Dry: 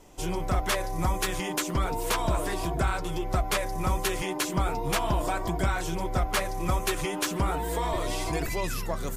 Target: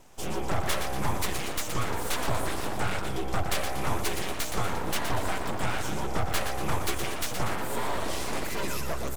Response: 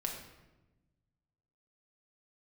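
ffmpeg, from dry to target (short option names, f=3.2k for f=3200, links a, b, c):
-af "aecho=1:1:119|238|357|476|595:0.422|0.198|0.0932|0.0438|0.0206,aeval=exprs='abs(val(0))':c=same"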